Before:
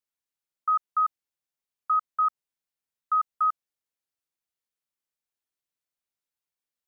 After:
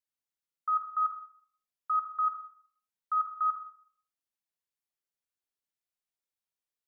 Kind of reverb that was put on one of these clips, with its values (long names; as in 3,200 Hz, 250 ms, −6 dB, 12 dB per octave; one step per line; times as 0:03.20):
four-comb reverb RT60 0.54 s, combs from 32 ms, DRR 3.5 dB
level −6 dB